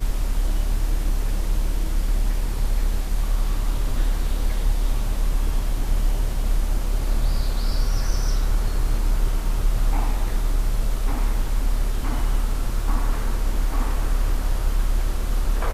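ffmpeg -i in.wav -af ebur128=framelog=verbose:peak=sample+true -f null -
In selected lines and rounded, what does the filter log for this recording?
Integrated loudness:
  I:         -26.6 LUFS
  Threshold: -36.6 LUFS
Loudness range:
  LRA:         1.0 LU
  Threshold: -46.5 LUFS
  LRA low:   -27.0 LUFS
  LRA high:  -26.0 LUFS
Sample peak:
  Peak:       -9.2 dBFS
True peak:
  Peak:       -9.2 dBFS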